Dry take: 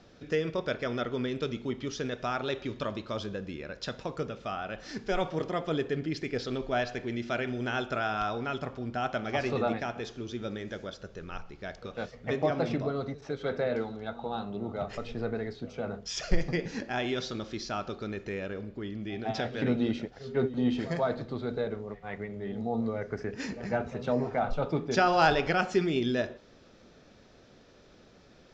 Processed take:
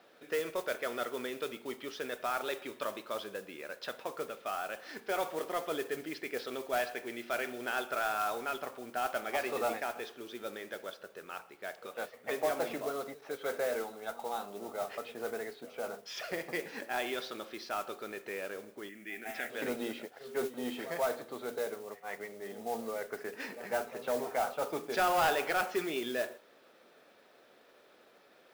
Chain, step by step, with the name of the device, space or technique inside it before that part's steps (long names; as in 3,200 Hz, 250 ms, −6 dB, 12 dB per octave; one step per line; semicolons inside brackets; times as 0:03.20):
carbon microphone (band-pass filter 480–3,400 Hz; soft clipping −22.5 dBFS, distortion −14 dB; noise that follows the level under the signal 15 dB)
0:18.89–0:19.50: graphic EQ with 10 bands 125 Hz −11 dB, 250 Hz +3 dB, 500 Hz −7 dB, 1,000 Hz −12 dB, 2,000 Hz +11 dB, 4,000 Hz −10 dB